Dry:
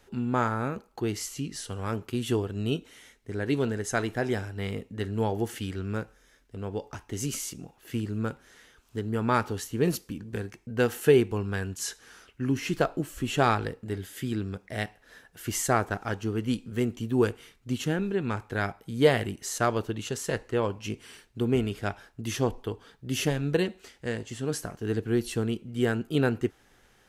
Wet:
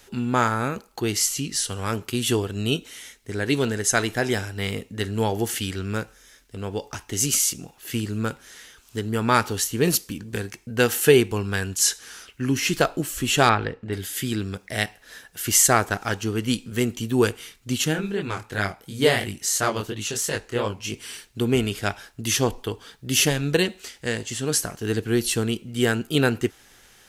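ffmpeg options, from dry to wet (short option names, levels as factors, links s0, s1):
-filter_complex "[0:a]asettb=1/sr,asplit=3[s0][s1][s2];[s0]atrim=end=13.494[s3];[s1]atrim=start=13.49:end=13.93,asetpts=PTS-STARTPTS,afade=t=in:d=0.004:c=qsin,afade=t=out:st=0.436:d=0.004:c=qsin,lowpass=2600[s4];[s2]atrim=start=13.926[s5];[s3][s4]acrossfade=d=0.004:c1=hsin:c2=qsin[s6];[s6][s5]acrossfade=d=0.004:c1=qsin:c2=hsin,asplit=3[s7][s8][s9];[s7]afade=t=out:st=17.92:d=0.02[s10];[s8]flanger=delay=19:depth=7.6:speed=2.9,afade=t=in:st=17.92:d=0.02,afade=t=out:st=20.91:d=0.02[s11];[s9]afade=t=in:st=20.91:d=0.02[s12];[s10][s11][s12]amix=inputs=3:normalize=0,highshelf=f=2200:g=11.5,volume=1.5"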